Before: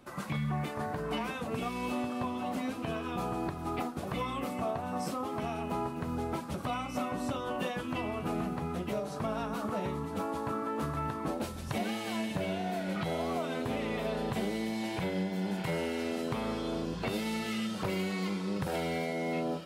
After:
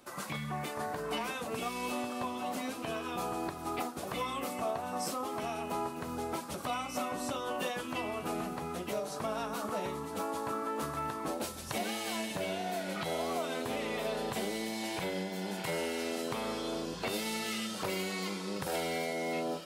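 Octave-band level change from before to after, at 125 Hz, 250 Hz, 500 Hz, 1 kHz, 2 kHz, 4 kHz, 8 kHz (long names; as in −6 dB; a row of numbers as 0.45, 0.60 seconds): −7.5, −4.5, −0.5, 0.0, +0.5, +2.5, +6.5 decibels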